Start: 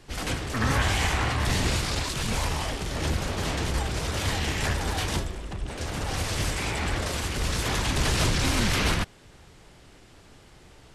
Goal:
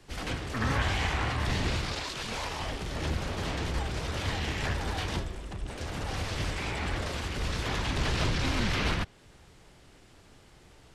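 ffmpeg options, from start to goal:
-filter_complex "[0:a]asettb=1/sr,asplit=3[s0][s1][s2];[s0]atrim=end=1.934[s3];[s1]atrim=start=1.93:end=2.6,asetpts=PTS-STARTPTS,afade=t=in:d=0.004:c=qsin,afade=t=out:st=0.666:d=0.004:c=qsin,bass=f=250:g=-9,treble=f=4000:g=3[s4];[s2]atrim=start=2.596[s5];[s3][s4]acrossfade=d=0.004:c1=hsin:c2=qsin[s6];[s6][s5]acrossfade=d=0.004:c1=qsin:c2=hsin,acrossover=split=130|5400[s7][s8][s9];[s9]acompressor=threshold=0.00355:ratio=6[s10];[s7][s8][s10]amix=inputs=3:normalize=0,volume=0.631"

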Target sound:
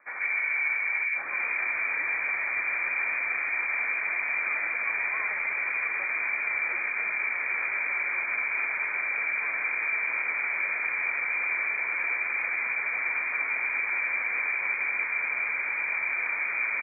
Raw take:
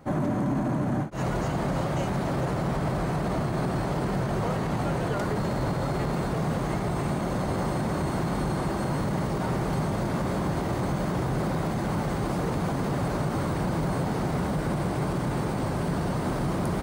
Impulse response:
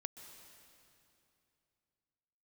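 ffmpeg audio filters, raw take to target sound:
-filter_complex "[0:a]lowpass=f=2100:t=q:w=0.5098,lowpass=f=2100:t=q:w=0.6013,lowpass=f=2100:t=q:w=0.9,lowpass=f=2100:t=q:w=2.563,afreqshift=-2500,acrossover=split=150|1700[s0][s1][s2];[s2]adelay=140[s3];[s0]adelay=540[s4];[s4][s1][s3]amix=inputs=3:normalize=0"

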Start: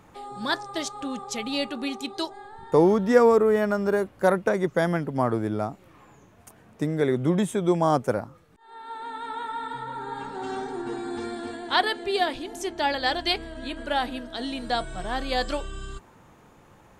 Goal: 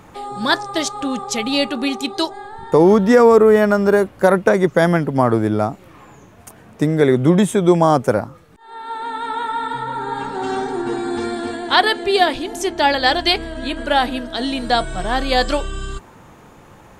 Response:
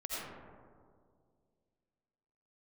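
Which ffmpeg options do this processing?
-af "alimiter=level_in=3.35:limit=0.891:release=50:level=0:latency=1,volume=0.891"

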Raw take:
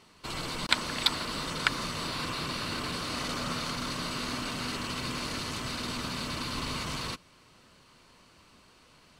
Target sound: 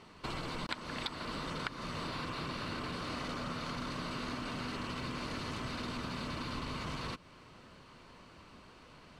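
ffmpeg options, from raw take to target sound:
-af "lowpass=f=2200:p=1,acompressor=threshold=0.00891:ratio=6,volume=1.68"

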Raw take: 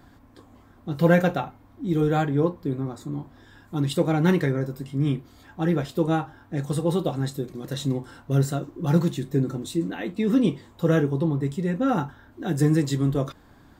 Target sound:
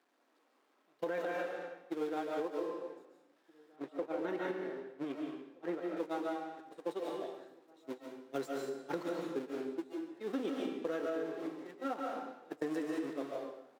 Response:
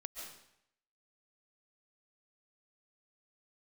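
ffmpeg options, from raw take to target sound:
-filter_complex "[0:a]aeval=exprs='val(0)+0.5*0.0473*sgn(val(0))':c=same,agate=range=0.01:threshold=0.126:ratio=16:detection=peak,highpass=f=320:w=0.5412,highpass=f=320:w=1.3066[s0];[1:a]atrim=start_sample=2205[s1];[s0][s1]afir=irnorm=-1:irlink=0,alimiter=limit=0.0708:level=0:latency=1:release=198,asettb=1/sr,asplit=3[s2][s3][s4];[s2]atrim=end=3.764[s5];[s3]atrim=start=3.76:end=5.97,asetpts=PTS-STARTPTS,afade=t=in:d=0.004:c=qsin,afade=t=out:st=2.206:d=0.004:c=qsin,highshelf=f=3300:g=-9.5[s6];[s4]atrim=start=5.966[s7];[s5][s6]acrossfade=d=0.004:c1=hsin:c2=qsin[s8];[s8][s7]acrossfade=d=0.004:c1=qsin:c2=hsin,acompressor=threshold=0.00891:ratio=4,aemphasis=mode=reproduction:type=cd,asplit=2[s9][s10];[s10]adelay=1574,volume=0.0562,highshelf=f=4000:g=-35.4[s11];[s9][s11]amix=inputs=2:normalize=0,volume=1.88"

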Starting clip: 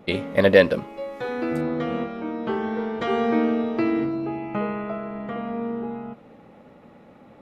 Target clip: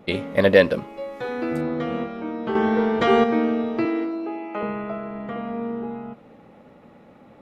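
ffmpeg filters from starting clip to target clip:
-filter_complex "[0:a]asettb=1/sr,asplit=3[s0][s1][s2];[s0]atrim=end=2.554[s3];[s1]atrim=start=2.55:end=3.24,asetpts=PTS-STARTPTS,afade=t=in:d=0.004:c=qsin,afade=t=out:st=0.686:d=0.004:c=qsin,acontrast=79[s4];[s2]atrim=start=3.236[s5];[s3][s4]acrossfade=d=0.004:c1=hsin:c2=qsin[s6];[s6][s5]acrossfade=d=0.004:c1=qsin:c2=hsin,asettb=1/sr,asplit=3[s7][s8][s9];[s7]atrim=end=3.854[s10];[s8]atrim=start=3.85:end=4.63,asetpts=PTS-STARTPTS,afade=t=in:d=0.004:c=qsin,afade=t=out:st=0.776:d=0.004:c=qsin,highpass=f=280:w=0.5412,highpass=f=280:w=1.3066[s11];[s9]atrim=start=4.626[s12];[s10][s11]acrossfade=d=0.004:c1=hsin:c2=qsin[s13];[s13][s12]acrossfade=d=0.004:c1=qsin:c2=hsin"

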